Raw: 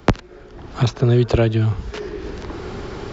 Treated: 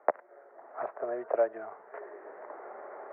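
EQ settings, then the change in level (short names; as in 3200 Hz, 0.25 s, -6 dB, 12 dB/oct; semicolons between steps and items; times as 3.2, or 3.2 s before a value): ladder high-pass 560 Hz, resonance 65%; Chebyshev low-pass 2000 Hz, order 5; air absorption 230 m; 0.0 dB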